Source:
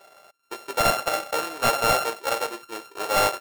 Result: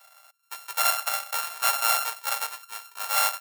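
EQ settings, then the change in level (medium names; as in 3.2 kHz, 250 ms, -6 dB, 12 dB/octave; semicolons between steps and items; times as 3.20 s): high-pass 820 Hz 24 dB/octave; treble shelf 8 kHz +11.5 dB; -3.0 dB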